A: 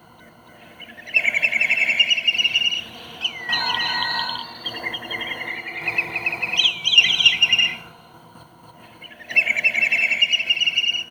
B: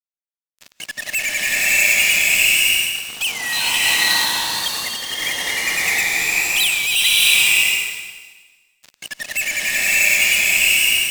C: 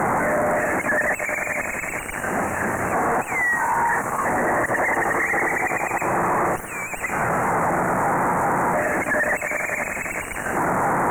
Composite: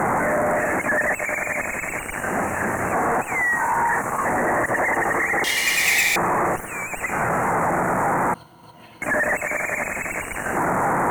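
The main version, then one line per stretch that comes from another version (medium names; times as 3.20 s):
C
5.44–6.16 s: from B
8.34–9.02 s: from A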